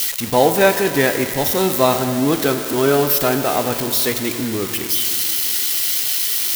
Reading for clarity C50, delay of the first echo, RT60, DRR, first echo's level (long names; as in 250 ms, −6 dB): 8.0 dB, no echo audible, 3.0 s, 7.0 dB, no echo audible